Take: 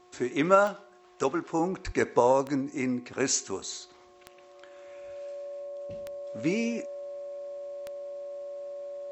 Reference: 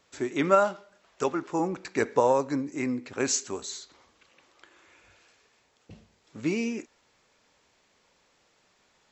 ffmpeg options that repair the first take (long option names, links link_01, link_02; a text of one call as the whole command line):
ffmpeg -i in.wav -filter_complex "[0:a]adeclick=threshold=4,bandreject=frequency=360.9:width_type=h:width=4,bandreject=frequency=721.8:width_type=h:width=4,bandreject=frequency=1082.7:width_type=h:width=4,bandreject=frequency=570:width=30,asplit=3[link_01][link_02][link_03];[link_01]afade=type=out:start_time=1.85:duration=0.02[link_04];[link_02]highpass=frequency=140:width=0.5412,highpass=frequency=140:width=1.3066,afade=type=in:start_time=1.85:duration=0.02,afade=type=out:start_time=1.97:duration=0.02[link_05];[link_03]afade=type=in:start_time=1.97:duration=0.02[link_06];[link_04][link_05][link_06]amix=inputs=3:normalize=0" out.wav